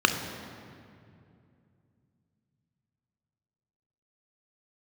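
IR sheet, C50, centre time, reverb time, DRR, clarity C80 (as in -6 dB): 7.5 dB, 35 ms, 2.5 s, 5.5 dB, 8.5 dB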